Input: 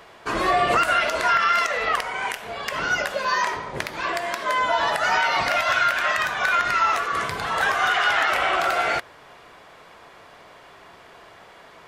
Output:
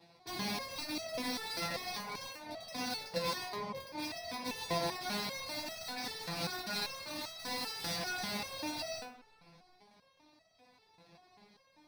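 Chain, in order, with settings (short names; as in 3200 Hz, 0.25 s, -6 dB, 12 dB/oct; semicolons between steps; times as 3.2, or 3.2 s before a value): 7.21–7.96 weighting filter ITU-R 468; compressor 6:1, threshold -26 dBFS, peak gain reduction 12 dB; crossover distortion -46 dBFS; 0.91–1.59 small resonant body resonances 230/330 Hz, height 9 dB, ringing for 40 ms; wrapped overs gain 24 dB; reverb RT60 1.0 s, pre-delay 3 ms, DRR 6 dB; stepped resonator 5.1 Hz 170–650 Hz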